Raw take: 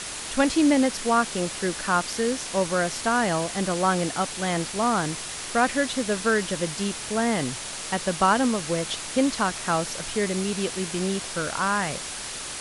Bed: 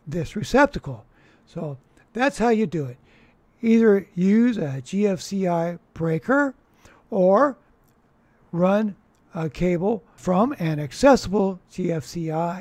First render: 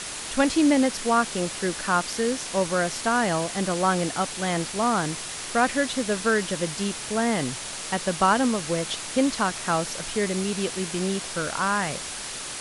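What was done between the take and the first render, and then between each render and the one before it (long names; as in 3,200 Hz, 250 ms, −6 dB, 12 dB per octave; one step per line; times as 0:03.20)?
hum removal 50 Hz, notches 2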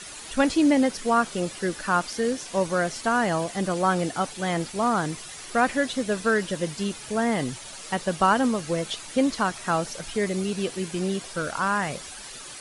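broadband denoise 10 dB, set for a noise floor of −35 dBFS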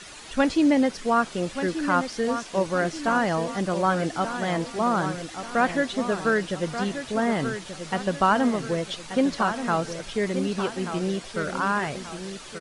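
high-frequency loss of the air 57 metres
repeating echo 1,183 ms, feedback 42%, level −9.5 dB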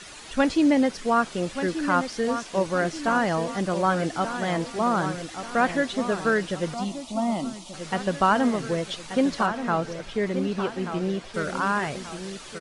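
0:06.74–0:07.74: phaser with its sweep stopped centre 440 Hz, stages 6
0:09.46–0:11.34: high-shelf EQ 5,300 Hz −11.5 dB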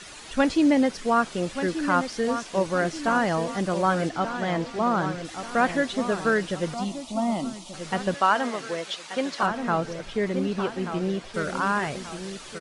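0:04.09–0:05.25: high-frequency loss of the air 68 metres
0:08.14–0:09.43: meter weighting curve A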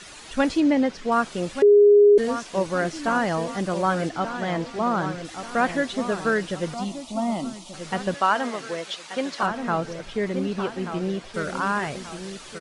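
0:00.60–0:01.12: high-frequency loss of the air 79 metres
0:01.62–0:02.18: beep over 411 Hz −10 dBFS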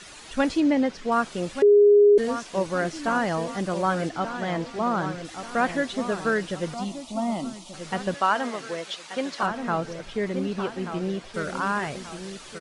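level −1.5 dB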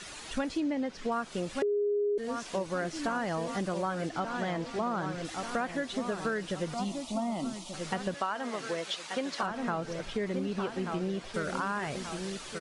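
downward compressor, threshold −29 dBFS, peak gain reduction 14 dB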